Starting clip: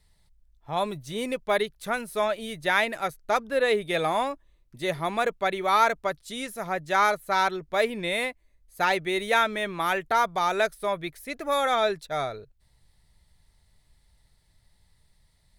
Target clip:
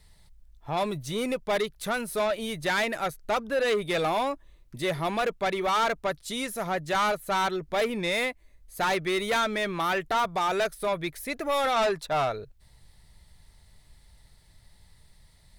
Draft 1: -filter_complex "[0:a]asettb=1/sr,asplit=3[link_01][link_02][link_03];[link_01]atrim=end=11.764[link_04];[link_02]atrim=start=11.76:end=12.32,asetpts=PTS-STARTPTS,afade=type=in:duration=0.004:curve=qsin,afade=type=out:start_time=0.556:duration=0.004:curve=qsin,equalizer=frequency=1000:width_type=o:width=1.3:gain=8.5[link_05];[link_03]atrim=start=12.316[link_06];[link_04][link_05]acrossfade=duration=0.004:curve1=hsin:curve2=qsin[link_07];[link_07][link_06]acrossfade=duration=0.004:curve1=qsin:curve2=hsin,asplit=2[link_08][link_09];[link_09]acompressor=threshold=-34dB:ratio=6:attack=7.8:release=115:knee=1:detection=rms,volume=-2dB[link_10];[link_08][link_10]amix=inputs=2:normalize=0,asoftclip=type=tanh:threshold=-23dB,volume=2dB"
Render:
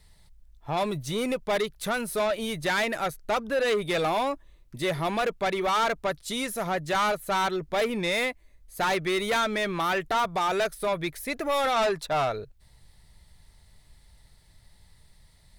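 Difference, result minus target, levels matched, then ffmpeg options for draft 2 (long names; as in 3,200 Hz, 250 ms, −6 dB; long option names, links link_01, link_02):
downward compressor: peak gain reduction −8.5 dB
-filter_complex "[0:a]asettb=1/sr,asplit=3[link_01][link_02][link_03];[link_01]atrim=end=11.764[link_04];[link_02]atrim=start=11.76:end=12.32,asetpts=PTS-STARTPTS,afade=type=in:duration=0.004:curve=qsin,afade=type=out:start_time=0.556:duration=0.004:curve=qsin,equalizer=frequency=1000:width_type=o:width=1.3:gain=8.5[link_05];[link_03]atrim=start=12.316[link_06];[link_04][link_05]acrossfade=duration=0.004:curve1=hsin:curve2=qsin[link_07];[link_07][link_06]acrossfade=duration=0.004:curve1=qsin:curve2=hsin,asplit=2[link_08][link_09];[link_09]acompressor=threshold=-44dB:ratio=6:attack=7.8:release=115:knee=1:detection=rms,volume=-2dB[link_10];[link_08][link_10]amix=inputs=2:normalize=0,asoftclip=type=tanh:threshold=-23dB,volume=2dB"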